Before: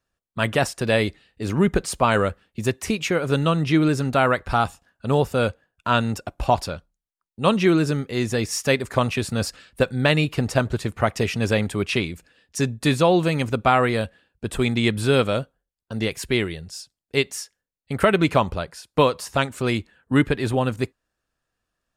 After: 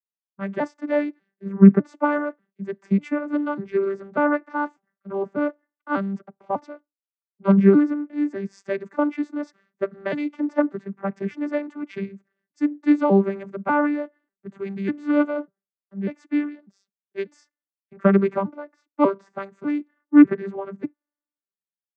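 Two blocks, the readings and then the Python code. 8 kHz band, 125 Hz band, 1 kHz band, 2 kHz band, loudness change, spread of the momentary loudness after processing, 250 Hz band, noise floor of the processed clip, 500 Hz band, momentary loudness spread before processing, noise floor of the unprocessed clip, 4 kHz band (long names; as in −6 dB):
below −25 dB, −5.5 dB, −5.0 dB, −6.5 dB, −0.5 dB, 17 LU, +3.5 dB, below −85 dBFS, −2.5 dB, 12 LU, below −85 dBFS, below −20 dB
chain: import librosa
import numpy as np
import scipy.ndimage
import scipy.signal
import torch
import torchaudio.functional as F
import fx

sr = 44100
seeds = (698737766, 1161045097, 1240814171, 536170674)

y = fx.vocoder_arp(x, sr, chord='bare fifth', root=55, every_ms=595)
y = fx.high_shelf_res(y, sr, hz=2400.0, db=-8.5, q=1.5)
y = fx.band_widen(y, sr, depth_pct=70)
y = y * librosa.db_to_amplitude(-2.0)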